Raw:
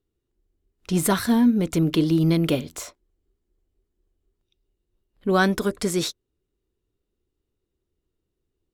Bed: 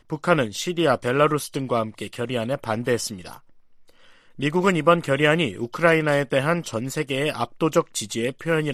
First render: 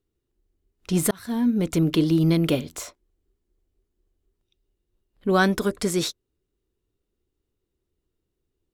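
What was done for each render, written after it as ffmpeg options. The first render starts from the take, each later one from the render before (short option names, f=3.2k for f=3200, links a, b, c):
-filter_complex "[0:a]asplit=2[a][b];[a]atrim=end=1.11,asetpts=PTS-STARTPTS,afade=t=out:st=1.106:d=0.004:c=hsin[c];[b]atrim=start=1.11,asetpts=PTS-STARTPTS,afade=t=in:d=0.54[d];[c][d]concat=n=2:v=0:a=1"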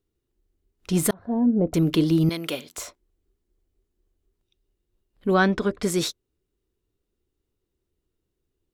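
-filter_complex "[0:a]asettb=1/sr,asplit=3[a][b][c];[a]atrim=end=1.134[d];[b]atrim=start=1.13:end=1.74,asetpts=PTS-STARTPTS,afade=t=in:d=0.004:c=qsin,afade=t=out:st=0.606:d=0.004:c=qsin,lowpass=f=650:t=q:w=2.7[e];[c]atrim=start=1.736[f];[d][e]acrossfade=d=0.004:c1=hsin:c2=qsin[g];[g][f]acrossfade=d=0.004:c1=qsin:c2=hsin,asettb=1/sr,asplit=3[h][i][j];[h]atrim=end=2.294[k];[i]atrim=start=2.29:end=2.78,asetpts=PTS-STARTPTS,afade=t=in:d=0.004:c=qsin,afade=t=out:st=0.486:d=0.004:c=qsin,highpass=f=950:p=1[l];[j]atrim=start=2.776[m];[k][l]acrossfade=d=0.004:c1=hsin:c2=qsin[n];[n][m]acrossfade=d=0.004:c1=qsin:c2=hsin,asplit=3[o][p][q];[o]afade=t=out:st=5.33:d=0.02[r];[p]lowpass=3.7k,afade=t=in:st=5.33:d=0.02,afade=t=out:st=5.82:d=0.02[s];[q]afade=t=in:st=5.82:d=0.02[t];[r][s][t]amix=inputs=3:normalize=0"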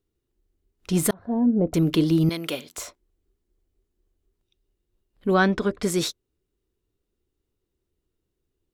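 -af anull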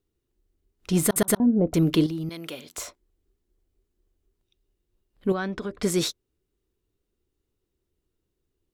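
-filter_complex "[0:a]asettb=1/sr,asplit=3[a][b][c];[a]atrim=end=2.064[d];[b]atrim=start=2.06:end=2.67,asetpts=PTS-STARTPTS,afade=t=in:d=0.004:c=qsin,afade=t=out:st=0.606:d=0.004:c=qsin,acompressor=threshold=-37dB:ratio=2:attack=3.2:release=140:knee=1:detection=peak[e];[c]atrim=start=2.666[f];[d][e]acrossfade=d=0.004:c1=hsin:c2=qsin[g];[g][f]acrossfade=d=0.004:c1=qsin:c2=hsin,asettb=1/sr,asplit=3[h][i][j];[h]atrim=end=5.324[k];[i]atrim=start=5.32:end=5.81,asetpts=PTS-STARTPTS,afade=t=in:d=0.004:c=qsin,afade=t=out:st=0.486:d=0.004:c=qsin,acompressor=threshold=-34dB:ratio=2:attack=3.2:release=140:knee=1:detection=peak[l];[j]atrim=start=5.806[m];[k][l]acrossfade=d=0.004:c1=hsin:c2=qsin[n];[n][m]acrossfade=d=0.004:c1=qsin:c2=hsin,asplit=4[o][p][q][r];[o]atrim=end=1.162[s];[p]atrim=start=1.038:end=1.162[t];[q]atrim=start=1.038:end=1.162[u];[r]atrim=start=1.398[v];[s][t]acrossfade=d=0.004:c1=hsin:c2=hsin[w];[w][u]acrossfade=d=0.004:c1=hsin:c2=hsin[x];[x][v]acrossfade=d=0.004:c1=hsin:c2=hsin"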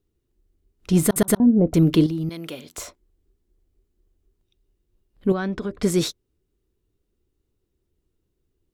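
-af "lowshelf=f=410:g=6"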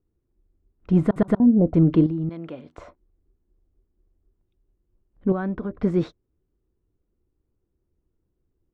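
-af "lowpass=1.3k,equalizer=f=410:w=6.4:g=-4.5"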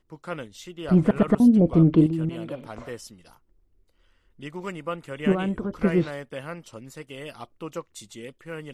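-filter_complex "[1:a]volume=-14.5dB[a];[0:a][a]amix=inputs=2:normalize=0"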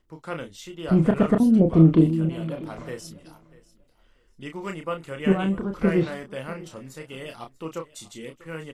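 -filter_complex "[0:a]asplit=2[a][b];[b]adelay=31,volume=-6dB[c];[a][c]amix=inputs=2:normalize=0,aecho=1:1:642|1284:0.0944|0.0208"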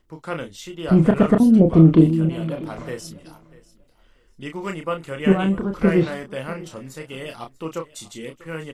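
-af "volume=4dB,alimiter=limit=-2dB:level=0:latency=1"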